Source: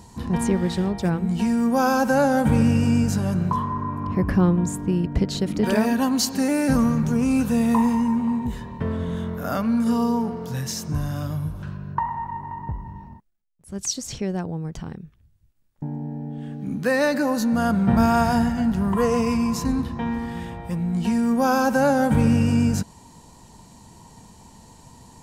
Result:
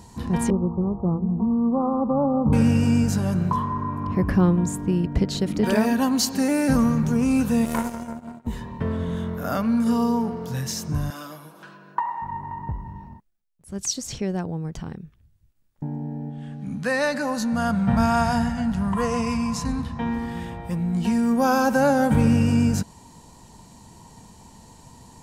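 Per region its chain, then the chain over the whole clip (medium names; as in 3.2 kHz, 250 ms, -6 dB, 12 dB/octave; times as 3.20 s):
0.50–2.53 s: sorted samples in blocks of 16 samples + steep low-pass 1.2 kHz 96 dB/octave + dynamic bell 680 Hz, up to -4 dB, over -35 dBFS, Q 1.5
7.65–8.47 s: tone controls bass +6 dB, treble +10 dB + power-law waveshaper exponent 3
11.10–12.22 s: Bessel high-pass 420 Hz, order 4 + comb 6.1 ms, depth 54%
16.30–20.00 s: low-pass 11 kHz 24 dB/octave + peaking EQ 360 Hz -12 dB 0.7 oct
whole clip: none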